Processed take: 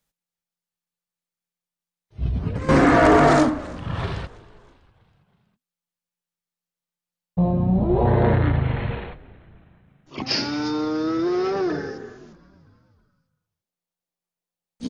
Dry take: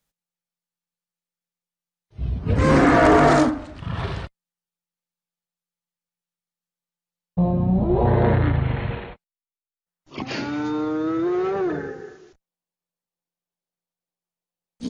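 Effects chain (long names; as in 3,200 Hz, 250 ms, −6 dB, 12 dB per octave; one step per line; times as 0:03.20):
0:02.22–0:02.69: compressor whose output falls as the input rises −25 dBFS, ratio −1
0:10.26–0:11.98: low-pass with resonance 5,200 Hz, resonance Q 9.5
on a send: echo with shifted repeats 323 ms, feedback 55%, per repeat −67 Hz, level −22 dB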